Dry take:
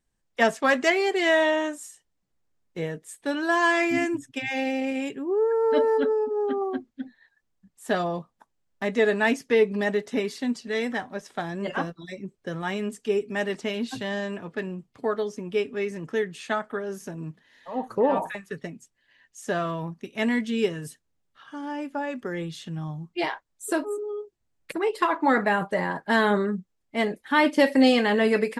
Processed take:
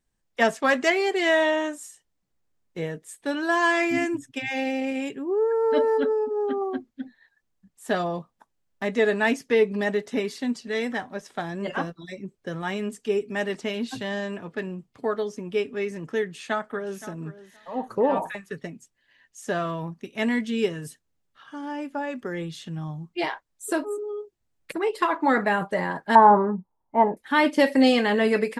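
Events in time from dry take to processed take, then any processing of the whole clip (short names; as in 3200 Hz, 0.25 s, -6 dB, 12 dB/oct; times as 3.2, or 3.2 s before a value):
16.21–17.04 echo throw 0.52 s, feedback 15%, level -15.5 dB
26.15–27.17 synth low-pass 920 Hz, resonance Q 11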